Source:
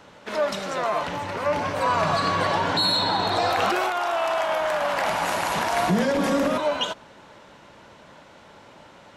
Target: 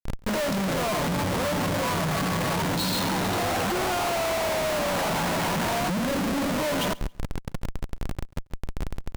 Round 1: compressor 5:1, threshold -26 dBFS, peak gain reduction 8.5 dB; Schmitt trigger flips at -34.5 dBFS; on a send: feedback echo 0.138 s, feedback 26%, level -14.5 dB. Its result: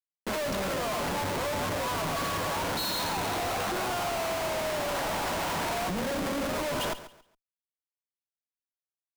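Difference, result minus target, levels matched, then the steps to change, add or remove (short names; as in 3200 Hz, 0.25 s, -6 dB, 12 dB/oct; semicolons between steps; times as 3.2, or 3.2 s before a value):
echo-to-direct +8 dB; 125 Hz band -5.0 dB
add after compressor: bell 170 Hz +14.5 dB 1.9 oct; change: feedback echo 0.138 s, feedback 26%, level -22.5 dB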